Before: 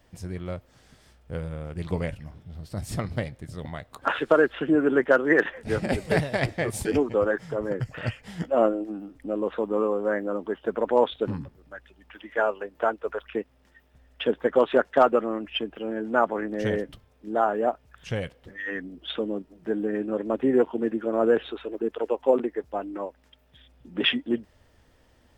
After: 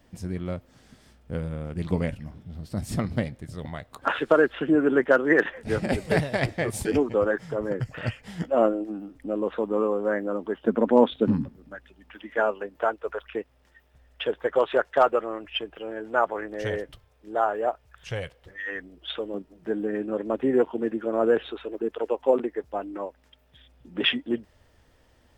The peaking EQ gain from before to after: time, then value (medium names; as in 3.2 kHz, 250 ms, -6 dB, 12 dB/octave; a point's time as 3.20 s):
peaking EQ 230 Hz 0.89 oct
+7 dB
from 3.39 s +1 dB
from 10.64 s +12.5 dB
from 11.75 s +4.5 dB
from 12.76 s -6.5 dB
from 14.24 s -12.5 dB
from 19.34 s -2 dB